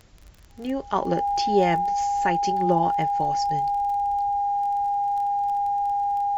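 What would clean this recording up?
de-click; notch 810 Hz, Q 30

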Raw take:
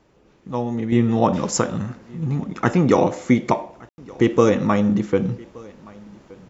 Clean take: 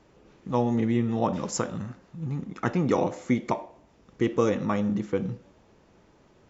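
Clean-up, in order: room tone fill 3.89–3.98; inverse comb 1.172 s -24 dB; gain correction -8 dB, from 0.92

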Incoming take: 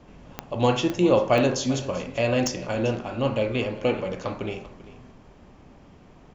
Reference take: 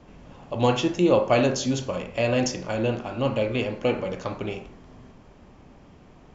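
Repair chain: de-click; inverse comb 0.392 s -17.5 dB

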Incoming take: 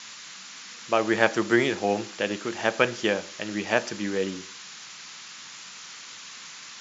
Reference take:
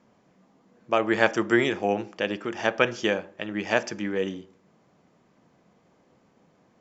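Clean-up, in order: noise print and reduce 20 dB

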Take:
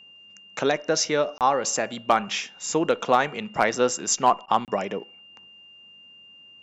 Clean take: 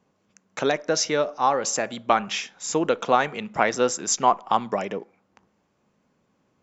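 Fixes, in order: clip repair -8 dBFS; notch 2800 Hz, Q 30; interpolate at 1.38/4.65, 28 ms; interpolate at 4.46, 19 ms

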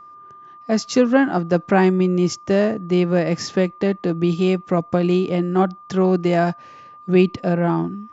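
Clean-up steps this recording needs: notch 1200 Hz, Q 30

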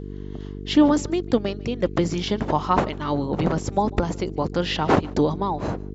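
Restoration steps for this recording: clip repair -7.5 dBFS; de-hum 49.1 Hz, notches 9; inverse comb 0.147 s -23.5 dB

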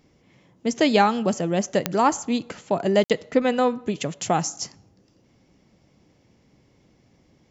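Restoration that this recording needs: de-click; interpolate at 3.04, 57 ms

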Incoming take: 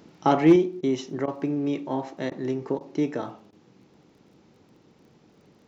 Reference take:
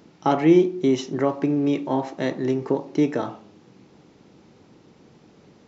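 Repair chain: clip repair -8.5 dBFS; de-click; interpolate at 0.81/1.26/2.3/2.79/3.51, 15 ms; gain correction +5 dB, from 0.56

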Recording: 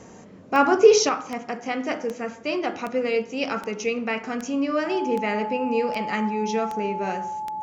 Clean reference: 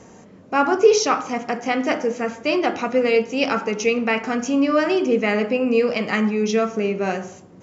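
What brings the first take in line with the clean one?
de-click; notch 860 Hz, Q 30; gain correction +6 dB, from 1.09

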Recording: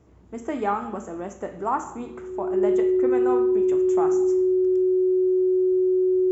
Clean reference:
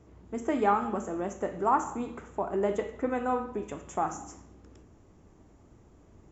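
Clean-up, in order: notch 370 Hz, Q 30

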